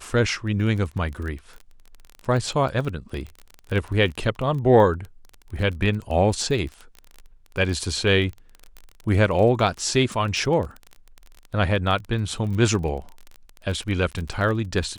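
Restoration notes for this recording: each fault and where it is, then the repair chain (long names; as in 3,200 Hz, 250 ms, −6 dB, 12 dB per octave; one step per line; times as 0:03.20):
surface crackle 24 per second −29 dBFS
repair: click removal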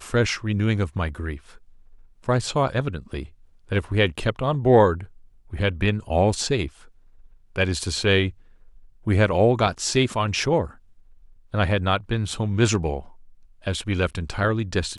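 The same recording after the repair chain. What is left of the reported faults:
none of them is left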